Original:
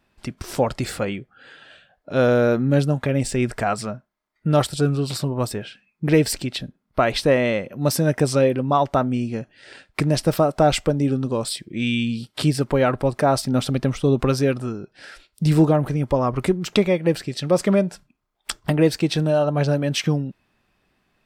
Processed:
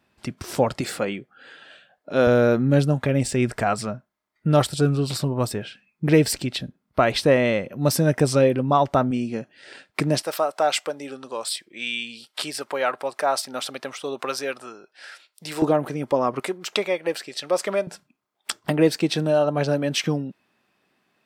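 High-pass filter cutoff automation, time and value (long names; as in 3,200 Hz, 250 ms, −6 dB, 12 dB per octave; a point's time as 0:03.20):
86 Hz
from 0:00.81 190 Hz
from 0:02.27 57 Hz
from 0:09.11 170 Hz
from 0:10.22 690 Hz
from 0:15.62 260 Hz
from 0:16.40 540 Hz
from 0:17.87 190 Hz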